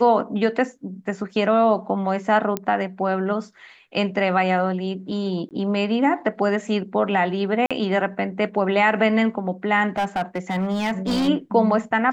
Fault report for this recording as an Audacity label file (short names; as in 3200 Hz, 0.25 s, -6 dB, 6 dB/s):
2.570000	2.570000	pop -10 dBFS
5.490000	5.510000	gap 18 ms
7.660000	7.710000	gap 46 ms
9.980000	11.290000	clipped -18.5 dBFS